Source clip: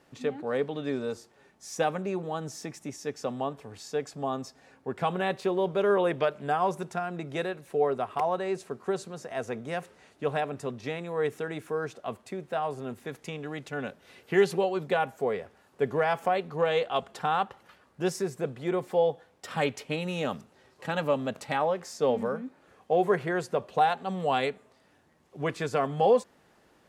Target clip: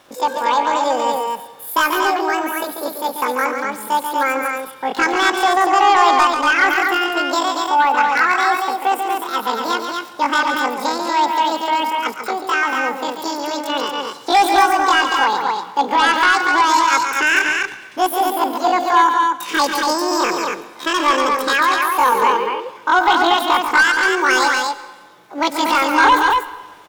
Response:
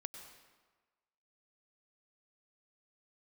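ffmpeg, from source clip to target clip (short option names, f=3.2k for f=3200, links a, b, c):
-filter_complex "[0:a]asetrate=88200,aresample=44100,atempo=0.5,aeval=exprs='0.299*sin(PI/2*2*val(0)/0.299)':c=same,aecho=1:1:139.9|236.2:0.447|0.631,asplit=2[a][b];[1:a]atrim=start_sample=2205[c];[b][c]afir=irnorm=-1:irlink=0,volume=-2dB[d];[a][d]amix=inputs=2:normalize=0,volume=-1dB"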